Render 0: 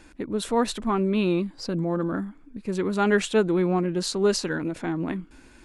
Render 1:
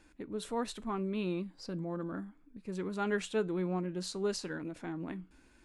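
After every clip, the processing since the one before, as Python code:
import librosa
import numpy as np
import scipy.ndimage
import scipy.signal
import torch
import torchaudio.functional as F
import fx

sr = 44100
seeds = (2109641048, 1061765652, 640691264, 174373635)

y = fx.comb_fb(x, sr, f0_hz=61.0, decay_s=0.23, harmonics='odd', damping=0.0, mix_pct=40)
y = F.gain(torch.from_numpy(y), -8.5).numpy()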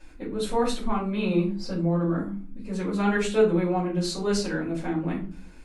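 y = fx.room_shoebox(x, sr, seeds[0], volume_m3=190.0, walls='furnished', distance_m=5.1)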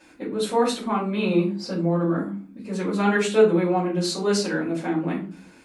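y = scipy.signal.sosfilt(scipy.signal.butter(2, 180.0, 'highpass', fs=sr, output='sos'), x)
y = F.gain(torch.from_numpy(y), 4.0).numpy()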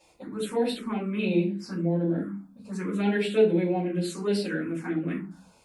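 y = fx.env_phaser(x, sr, low_hz=260.0, high_hz=1200.0, full_db=-19.0)
y = F.gain(torch.from_numpy(y), -2.5).numpy()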